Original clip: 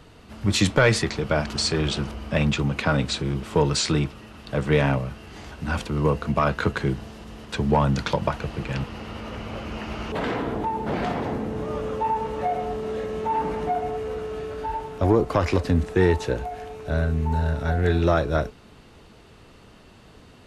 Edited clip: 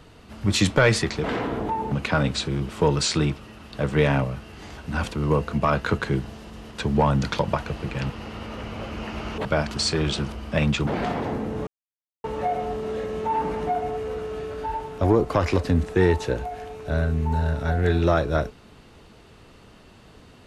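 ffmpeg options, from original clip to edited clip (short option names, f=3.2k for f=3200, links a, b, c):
-filter_complex "[0:a]asplit=7[a][b][c][d][e][f][g];[a]atrim=end=1.242[h];[b]atrim=start=10.188:end=10.872[i];[c]atrim=start=2.658:end=10.192[j];[d]atrim=start=1.238:end=2.662[k];[e]atrim=start=10.868:end=11.67,asetpts=PTS-STARTPTS,afade=t=out:st=0.798:d=0.004:c=hsin[l];[f]atrim=start=11.67:end=12.24,asetpts=PTS-STARTPTS,volume=0[m];[g]atrim=start=12.24,asetpts=PTS-STARTPTS,afade=t=in:d=0.004:c=hsin[n];[h][i]acrossfade=d=0.004:c1=hsin:c2=hsin[o];[o][j]acrossfade=d=0.004:c1=hsin:c2=hsin[p];[p][k]acrossfade=d=0.004:c1=hsin:c2=hsin[q];[l][m][n]concat=n=3:v=0:a=1[r];[q][r]acrossfade=d=0.004:c1=hsin:c2=hsin"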